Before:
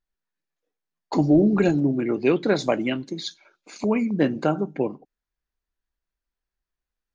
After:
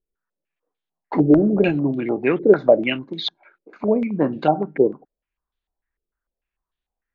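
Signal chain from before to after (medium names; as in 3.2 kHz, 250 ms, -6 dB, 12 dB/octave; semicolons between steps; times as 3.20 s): distance through air 70 m; step-sequenced low-pass 6.7 Hz 430–3500 Hz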